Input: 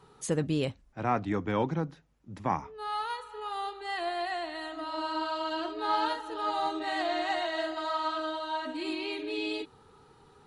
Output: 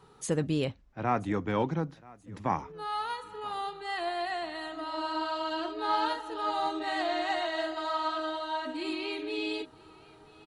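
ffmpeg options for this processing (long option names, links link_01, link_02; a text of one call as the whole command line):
ffmpeg -i in.wav -filter_complex "[0:a]asettb=1/sr,asplit=3[link_01][link_02][link_03];[link_01]atrim=end=0.644[link_04];[link_02]atrim=start=0.64:end=1.08,asetpts=PTS-STARTPTS,afade=type=in:duration=0.004:curve=qsin,afade=type=out:start_time=0.436:duration=0.004:curve=qsin,lowpass=5200[link_05];[link_03]atrim=start=1.076[link_06];[link_04][link_05]acrossfade=duration=0.004:curve1=hsin:curve2=qsin[link_07];[link_07][link_06]acrossfade=duration=0.004:curve1=qsin:curve2=hsin,asplit=2[link_08][link_09];[link_09]aecho=0:1:981|1962|2943:0.0668|0.0281|0.0118[link_10];[link_08][link_10]amix=inputs=2:normalize=0" out.wav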